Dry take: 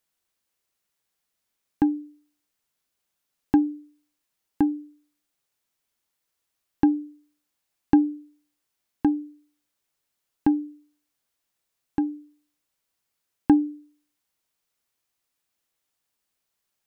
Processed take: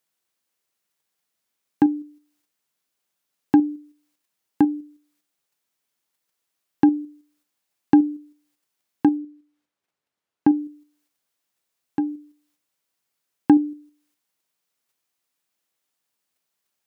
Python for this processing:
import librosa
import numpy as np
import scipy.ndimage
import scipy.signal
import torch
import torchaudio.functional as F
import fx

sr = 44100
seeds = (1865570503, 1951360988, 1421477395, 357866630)

p1 = scipy.signal.sosfilt(scipy.signal.butter(2, 120.0, 'highpass', fs=sr, output='sos'), x)
p2 = fx.level_steps(p1, sr, step_db=20)
p3 = p1 + (p2 * 10.0 ** (-1.0 / 20.0))
y = fx.lowpass(p3, sr, hz=2100.0, slope=6, at=(9.17, 10.55))